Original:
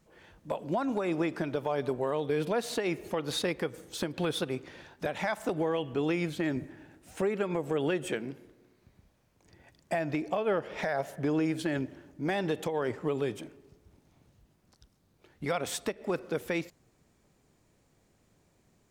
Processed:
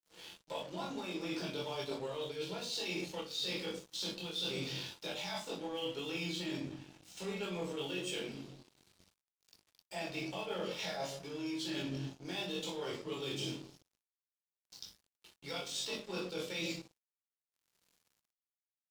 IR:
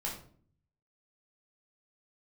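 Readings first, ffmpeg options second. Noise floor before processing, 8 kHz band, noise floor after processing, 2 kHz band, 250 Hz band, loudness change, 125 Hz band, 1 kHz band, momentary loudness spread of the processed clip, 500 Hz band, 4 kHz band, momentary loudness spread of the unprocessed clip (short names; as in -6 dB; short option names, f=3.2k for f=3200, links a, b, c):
-69 dBFS, -2.5 dB, under -85 dBFS, -6.5 dB, -9.5 dB, -7.5 dB, -8.5 dB, -10.0 dB, 10 LU, -10.0 dB, +2.5 dB, 8 LU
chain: -filter_complex "[0:a]highpass=f=130:p=1,asplit=2[a][b];[b]adelay=22,volume=-5dB[c];[a][c]amix=inputs=2:normalize=0[d];[1:a]atrim=start_sample=2205[e];[d][e]afir=irnorm=-1:irlink=0,acrossover=split=200|6100[f][g][h];[g]aexciter=amount=10.9:drive=5.1:freq=2.8k[i];[f][i][h]amix=inputs=3:normalize=0,tremolo=f=0.67:d=0.65,areverse,acompressor=threshold=-36dB:ratio=12,areverse,aeval=exprs='sgn(val(0))*max(abs(val(0))-0.002,0)':c=same,volume=1dB"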